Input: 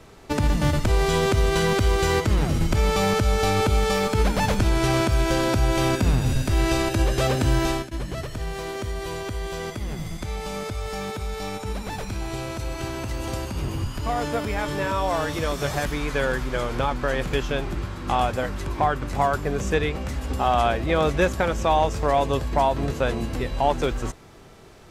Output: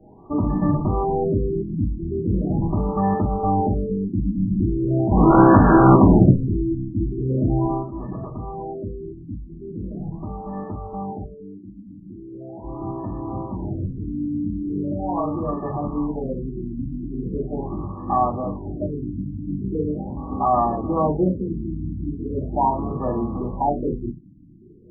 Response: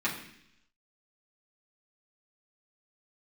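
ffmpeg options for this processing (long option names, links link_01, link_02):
-filter_complex "[0:a]asuperstop=centerf=1500:order=8:qfactor=2.4,asplit=3[link_01][link_02][link_03];[link_01]afade=type=out:start_time=5.1:duration=0.02[link_04];[link_02]aeval=exprs='0.335*sin(PI/2*3.16*val(0)/0.335)':channel_layout=same,afade=type=in:start_time=5.1:duration=0.02,afade=type=out:start_time=6.28:duration=0.02[link_05];[link_03]afade=type=in:start_time=6.28:duration=0.02[link_06];[link_04][link_05][link_06]amix=inputs=3:normalize=0,asettb=1/sr,asplit=3[link_07][link_08][link_09];[link_07]atrim=end=11.264[link_10];[link_08]atrim=start=11.26:end=12.64,asetpts=PTS-STARTPTS,afade=type=in:duration=0.004:curve=qsin,afade=type=out:start_time=1.376:duration=0.004:curve=qsin,aemphasis=mode=production:type=riaa[link_11];[link_09]atrim=start=12.636[link_12];[link_10][link_11]acrossfade=duration=0.004:curve1=hsin:curve2=qsin[link_13];[link_13][link_12]acrossfade=duration=0.004:curve1=qsin:curve2=hsin[link_14];[1:a]atrim=start_sample=2205,atrim=end_sample=3528[link_15];[link_14][link_15]afir=irnorm=-1:irlink=0,afftfilt=real='re*lt(b*sr/1024,330*pow(1800/330,0.5+0.5*sin(2*PI*0.4*pts/sr)))':imag='im*lt(b*sr/1024,330*pow(1800/330,0.5+0.5*sin(2*PI*0.4*pts/sr)))':win_size=1024:overlap=0.75,volume=-5dB"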